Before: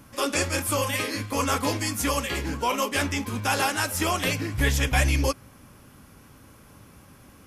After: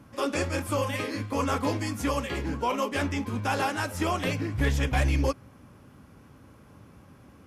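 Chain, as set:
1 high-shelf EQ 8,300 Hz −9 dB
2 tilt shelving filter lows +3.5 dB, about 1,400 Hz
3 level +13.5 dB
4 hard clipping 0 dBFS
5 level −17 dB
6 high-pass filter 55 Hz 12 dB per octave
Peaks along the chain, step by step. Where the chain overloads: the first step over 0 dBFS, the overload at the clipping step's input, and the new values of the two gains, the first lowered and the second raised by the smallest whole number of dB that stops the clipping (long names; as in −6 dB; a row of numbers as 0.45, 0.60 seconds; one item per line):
−9.0, −7.5, +6.0, 0.0, −17.0, −13.0 dBFS
step 3, 6.0 dB
step 3 +7.5 dB, step 5 −11 dB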